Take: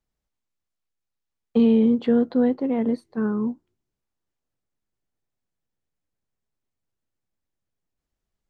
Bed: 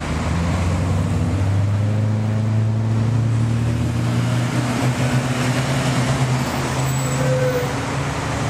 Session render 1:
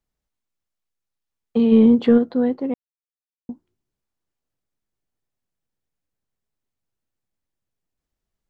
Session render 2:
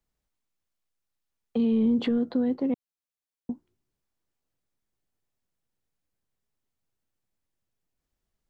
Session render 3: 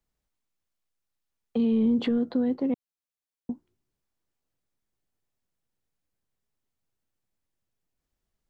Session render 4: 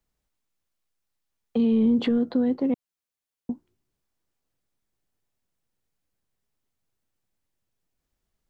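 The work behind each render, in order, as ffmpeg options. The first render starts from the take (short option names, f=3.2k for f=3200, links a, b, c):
-filter_complex "[0:a]asplit=3[a][b][c];[a]afade=t=out:st=1.71:d=0.02[d];[b]acontrast=55,afade=t=in:st=1.71:d=0.02,afade=t=out:st=2.17:d=0.02[e];[c]afade=t=in:st=2.17:d=0.02[f];[d][e][f]amix=inputs=3:normalize=0,asplit=3[g][h][i];[g]atrim=end=2.74,asetpts=PTS-STARTPTS,afade=t=out:st=2.736:d=0.004:c=hsin[j];[h]atrim=start=2.74:end=3.49,asetpts=PTS-STARTPTS,volume=0[k];[i]atrim=start=3.49,asetpts=PTS-STARTPTS,afade=t=in:d=0.004:c=hsin[l];[j][k][l]concat=n=3:v=0:a=1"
-filter_complex "[0:a]alimiter=limit=-16dB:level=0:latency=1,acrossover=split=320|3000[a][b][c];[b]acompressor=threshold=-32dB:ratio=6[d];[a][d][c]amix=inputs=3:normalize=0"
-af anull
-af "volume=2.5dB"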